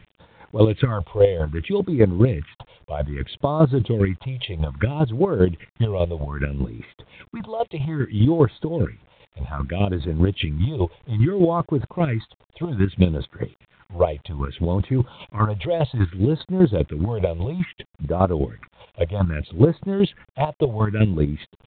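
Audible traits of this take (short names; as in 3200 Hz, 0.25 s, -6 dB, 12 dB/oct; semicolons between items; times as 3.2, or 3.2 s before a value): chopped level 5 Hz, depth 60%, duty 25%; phasing stages 4, 0.62 Hz, lowest notch 230–2900 Hz; a quantiser's noise floor 10-bit, dither none; µ-law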